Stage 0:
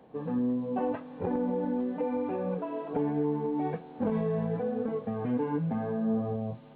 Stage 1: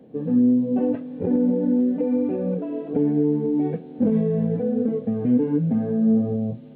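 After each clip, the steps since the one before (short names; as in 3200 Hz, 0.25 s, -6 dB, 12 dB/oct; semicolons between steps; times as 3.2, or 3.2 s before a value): graphic EQ 125/250/500/1000 Hz +6/+10/+6/-11 dB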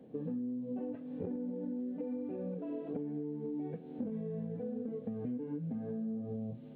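compressor 12:1, threshold -29 dBFS, peak gain reduction 15 dB; gain -6.5 dB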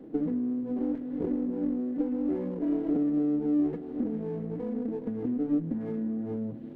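small resonant body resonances 320/1700 Hz, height 16 dB, ringing for 45 ms; reverb RT60 3.0 s, pre-delay 85 ms, DRR 14.5 dB; running maximum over 9 samples; gain +1.5 dB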